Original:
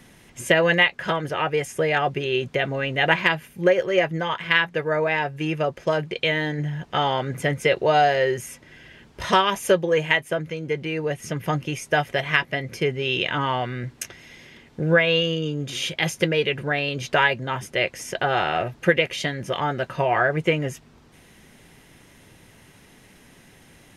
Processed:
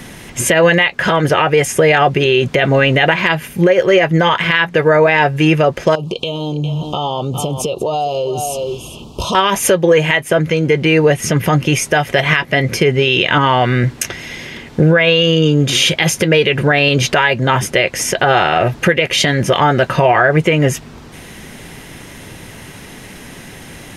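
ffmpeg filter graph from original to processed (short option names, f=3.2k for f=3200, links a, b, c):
-filter_complex "[0:a]asettb=1/sr,asplit=3[a][b][c];[a]atrim=end=5.954[d];[b]atrim=start=5.95:end=9.35,asetpts=PTS-STARTPTS,afade=t=in:d=0.004:c=qsin,afade=t=out:st=3.396:d=0.004:c=qsin,aecho=1:1:406:0.158,atrim=end_sample=149940,acompressor=threshold=-32dB:ratio=8:attack=3.2:release=140:knee=1:detection=peak,asuperstop=centerf=1800:order=8:qfactor=1.2[e];[c]atrim=start=9.346[f];[d][e]acrossfade=d=0.004:c1=hsin:c2=qsin[g];[g][f]acrossfade=d=0.004:c1=qsin:c2=hsin,acompressor=threshold=-23dB:ratio=4,alimiter=level_in=18dB:limit=-1dB:release=50:level=0:latency=1,volume=-1dB"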